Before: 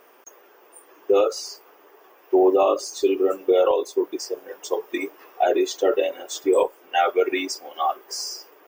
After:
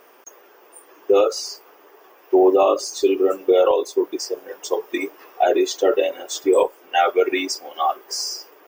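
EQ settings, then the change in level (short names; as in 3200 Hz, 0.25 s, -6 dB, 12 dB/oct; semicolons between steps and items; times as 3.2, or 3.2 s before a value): bell 5100 Hz +2 dB; +2.5 dB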